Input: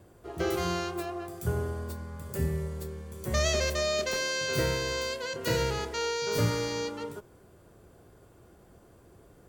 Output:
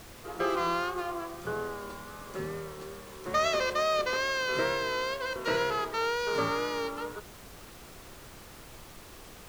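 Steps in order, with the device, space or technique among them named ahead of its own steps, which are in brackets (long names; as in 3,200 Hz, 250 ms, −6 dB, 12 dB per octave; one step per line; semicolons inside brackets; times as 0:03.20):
horn gramophone (band-pass filter 270–4,200 Hz; parametric band 1,200 Hz +10 dB 0.52 octaves; tape wow and flutter; pink noise bed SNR 16 dB)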